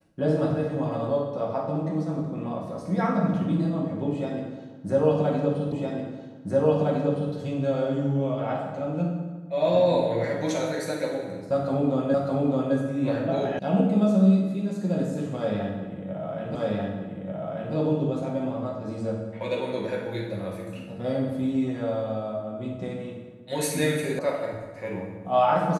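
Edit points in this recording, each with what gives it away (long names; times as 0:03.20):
0:05.72: the same again, the last 1.61 s
0:12.14: the same again, the last 0.61 s
0:13.59: cut off before it has died away
0:16.55: the same again, the last 1.19 s
0:24.19: cut off before it has died away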